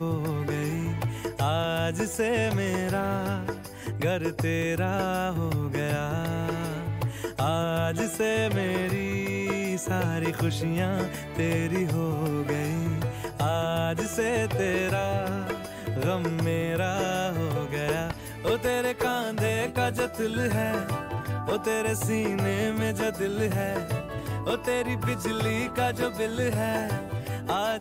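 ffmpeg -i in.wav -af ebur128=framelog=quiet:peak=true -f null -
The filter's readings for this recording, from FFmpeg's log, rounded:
Integrated loudness:
  I:         -28.0 LUFS
  Threshold: -38.0 LUFS
Loudness range:
  LRA:         1.0 LU
  Threshold: -48.0 LUFS
  LRA low:   -28.4 LUFS
  LRA high:  -27.5 LUFS
True peak:
  Peak:      -15.4 dBFS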